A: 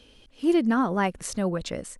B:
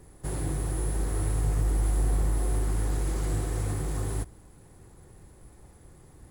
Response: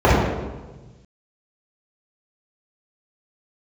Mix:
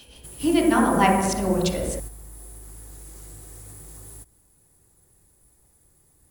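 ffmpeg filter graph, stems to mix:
-filter_complex "[0:a]lowshelf=f=480:g=-9.5,tremolo=f=6.7:d=0.75,highshelf=f=2300:g=7.5,volume=1.41,asplit=3[s0][s1][s2];[s1]volume=0.075[s3];[1:a]aemphasis=mode=production:type=75fm,acompressor=threshold=0.0447:ratio=6,volume=0.596[s4];[s2]apad=whole_len=277920[s5];[s4][s5]sidechaingate=range=0.447:threshold=0.00251:ratio=16:detection=peak[s6];[2:a]atrim=start_sample=2205[s7];[s3][s7]afir=irnorm=-1:irlink=0[s8];[s0][s6][s8]amix=inputs=3:normalize=0"

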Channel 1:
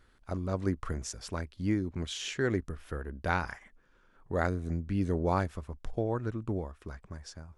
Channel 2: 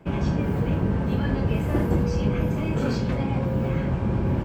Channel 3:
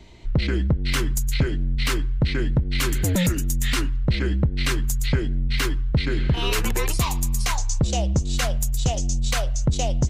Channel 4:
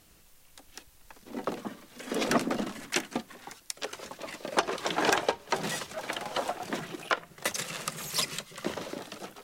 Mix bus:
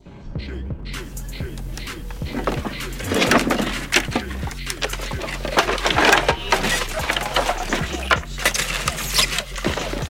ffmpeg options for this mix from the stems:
-filter_complex "[0:a]volume=0.237[s0];[1:a]alimiter=limit=0.0891:level=0:latency=1:release=17,volume=0.422[s1];[2:a]acompressor=mode=upward:threshold=0.0158:ratio=2.5,flanger=delay=7.3:depth=7:regen=-64:speed=1.2:shape=triangular,volume=0.631[s2];[3:a]acontrast=82,adelay=1000,volume=1.33[s3];[s0][s1]amix=inputs=2:normalize=0,acompressor=threshold=0.00501:ratio=1.5,volume=1[s4];[s2][s3][s4]amix=inputs=3:normalize=0,asoftclip=type=hard:threshold=0.335,adynamicequalizer=threshold=0.0158:dfrequency=2300:dqfactor=0.76:tfrequency=2300:tqfactor=0.76:attack=5:release=100:ratio=0.375:range=3:mode=boostabove:tftype=bell"

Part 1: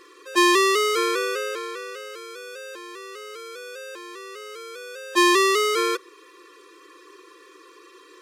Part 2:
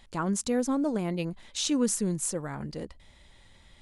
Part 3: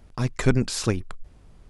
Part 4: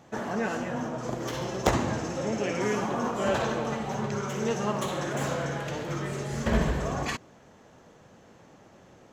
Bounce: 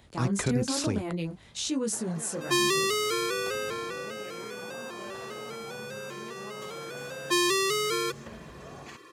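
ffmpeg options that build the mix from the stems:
-filter_complex "[0:a]adelay=2150,volume=0.75[s0];[1:a]flanger=delay=18.5:depth=7.5:speed=1.1,volume=1.12[s1];[2:a]alimiter=limit=0.2:level=0:latency=1:release=57,volume=0.794[s2];[3:a]acompressor=threshold=0.0355:ratio=6,adelay=1800,volume=0.266[s3];[s0][s1][s2][s3]amix=inputs=4:normalize=0,highpass=77,acrossover=split=290|3000[s4][s5][s6];[s5]acompressor=threshold=0.0355:ratio=6[s7];[s4][s7][s6]amix=inputs=3:normalize=0"

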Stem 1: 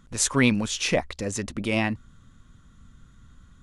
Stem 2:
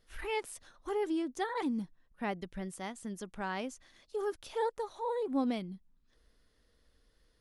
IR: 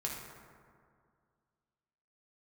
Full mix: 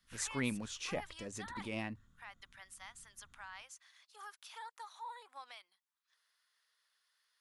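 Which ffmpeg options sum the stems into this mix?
-filter_complex "[0:a]agate=range=0.0224:threshold=0.00355:ratio=3:detection=peak,volume=0.158[s0];[1:a]highpass=f=1000:w=0.5412,highpass=f=1000:w=1.3066,alimiter=level_in=4.73:limit=0.0631:level=0:latency=1:release=162,volume=0.211,volume=0.841[s1];[s0][s1]amix=inputs=2:normalize=0,bandreject=f=50:t=h:w=6,bandreject=f=100:t=h:w=6,bandreject=f=150:t=h:w=6"

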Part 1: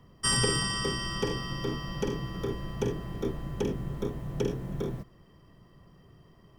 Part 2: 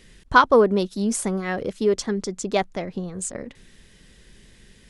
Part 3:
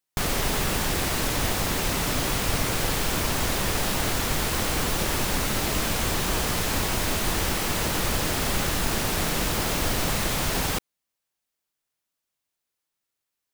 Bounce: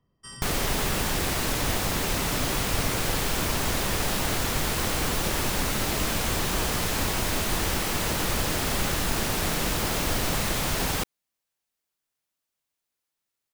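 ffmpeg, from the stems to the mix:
-filter_complex "[0:a]volume=0.15[s0];[2:a]adelay=250,volume=0.891[s1];[s0][s1]amix=inputs=2:normalize=0"

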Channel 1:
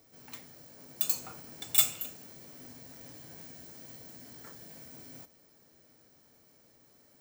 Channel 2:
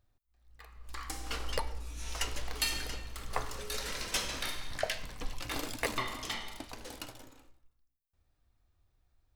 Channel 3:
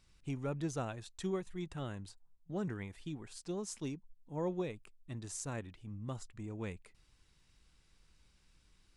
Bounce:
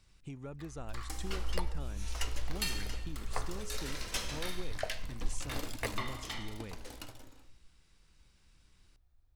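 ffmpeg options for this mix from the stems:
-filter_complex "[1:a]lowshelf=f=120:g=8.5,volume=0.631[s0];[2:a]acompressor=threshold=0.00501:ratio=3,volume=1.26[s1];[s0][s1]amix=inputs=2:normalize=0"

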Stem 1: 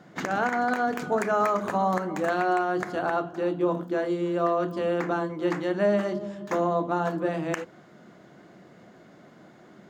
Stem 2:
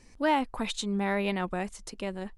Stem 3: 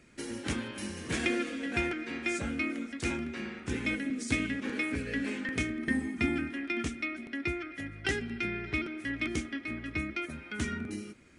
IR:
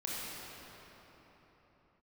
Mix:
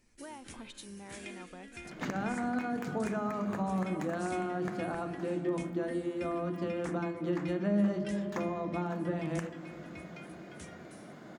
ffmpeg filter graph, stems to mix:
-filter_complex "[0:a]bandreject=f=86.45:t=h:w=4,bandreject=f=172.9:t=h:w=4,acrossover=split=240[s0][s1];[s1]acompressor=threshold=0.01:ratio=4[s2];[s0][s2]amix=inputs=2:normalize=0,adelay=1850,volume=1.06,asplit=2[s3][s4];[s4]volume=0.211[s5];[1:a]acompressor=threshold=0.0316:ratio=6,volume=0.2[s6];[2:a]aemphasis=mode=production:type=50fm,volume=0.133[s7];[3:a]atrim=start_sample=2205[s8];[s5][s8]afir=irnorm=-1:irlink=0[s9];[s3][s6][s7][s9]amix=inputs=4:normalize=0"

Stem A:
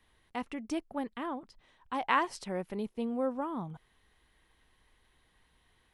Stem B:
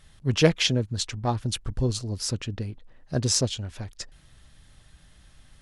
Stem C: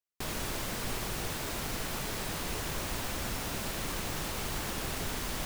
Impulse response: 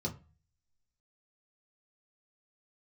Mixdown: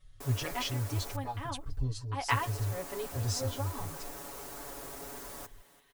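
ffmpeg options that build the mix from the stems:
-filter_complex "[0:a]lowshelf=f=440:g=-11,adelay=200,volume=1.12[s0];[1:a]lowshelf=f=120:t=q:w=3:g=10.5,asplit=2[s1][s2];[s2]adelay=4.9,afreqshift=-0.41[s3];[s1][s3]amix=inputs=2:normalize=1,volume=0.237,asplit=2[s4][s5];[2:a]highpass=330,equalizer=f=3000:t=o:w=1.9:g=-12,volume=0.473,asplit=3[s6][s7][s8];[s6]atrim=end=1.16,asetpts=PTS-STARTPTS,afade=t=out:st=1.156:d=0.004:c=hsin[s9];[s7]atrim=start=1.16:end=2.29,asetpts=PTS-STARTPTS,volume=0[s10];[s8]atrim=start=2.29,asetpts=PTS-STARTPTS,afade=t=in:d=0.004:c=hsin[s11];[s9][s10][s11]concat=n=3:v=0:a=1,asplit=2[s12][s13];[s13]volume=0.119[s14];[s5]apad=whole_len=270466[s15];[s0][s15]sidechaincompress=threshold=0.00631:ratio=8:attack=32:release=144[s16];[s14]aecho=0:1:337|674|1011|1348|1685:1|0.33|0.109|0.0359|0.0119[s17];[s16][s4][s12][s17]amix=inputs=4:normalize=0,aecho=1:1:7.1:0.97"

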